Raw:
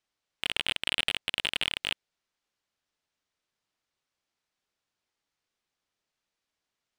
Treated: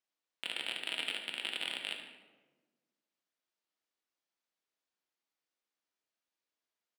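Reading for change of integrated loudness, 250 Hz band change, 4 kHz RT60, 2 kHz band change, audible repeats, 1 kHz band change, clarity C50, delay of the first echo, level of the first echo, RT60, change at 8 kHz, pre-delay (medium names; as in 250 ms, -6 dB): -7.5 dB, -7.0 dB, 0.75 s, -7.0 dB, 2, -6.5 dB, 5.0 dB, 74 ms, -10.5 dB, 1.3 s, -8.0 dB, 3 ms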